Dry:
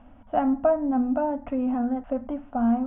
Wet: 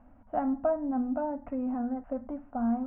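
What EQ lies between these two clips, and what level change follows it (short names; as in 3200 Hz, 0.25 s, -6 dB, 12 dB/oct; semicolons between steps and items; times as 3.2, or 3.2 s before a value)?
LPF 2200 Hz 24 dB/oct; air absorption 130 m; -6.0 dB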